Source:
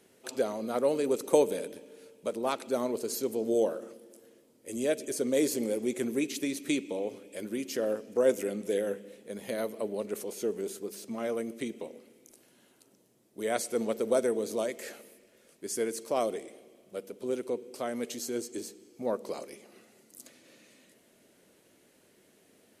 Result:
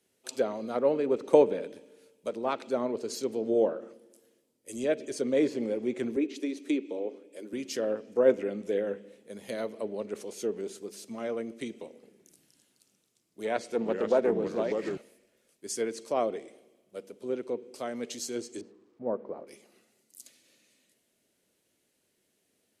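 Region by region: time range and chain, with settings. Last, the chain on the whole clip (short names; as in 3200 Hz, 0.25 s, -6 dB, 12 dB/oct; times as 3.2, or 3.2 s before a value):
6.16–7.53 ladder high-pass 210 Hz, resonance 20% + bell 340 Hz +6 dB 1.7 oct
11.86–14.97 echoes that change speed 0.168 s, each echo -3 st, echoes 3, each echo -6 dB + Doppler distortion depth 0.13 ms
18.61–19.47 switching spikes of -35.5 dBFS + LPF 1000 Hz
whole clip: treble ducked by the level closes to 2800 Hz, closed at -25.5 dBFS; three-band expander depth 40%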